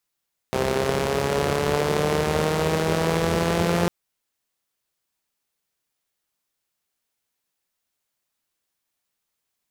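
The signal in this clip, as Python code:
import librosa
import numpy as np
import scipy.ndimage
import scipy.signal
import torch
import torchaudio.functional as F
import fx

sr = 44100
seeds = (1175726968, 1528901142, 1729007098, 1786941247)

y = fx.engine_four_rev(sr, seeds[0], length_s=3.35, rpm=3900, resonances_hz=(88.0, 180.0, 400.0), end_rpm=5200)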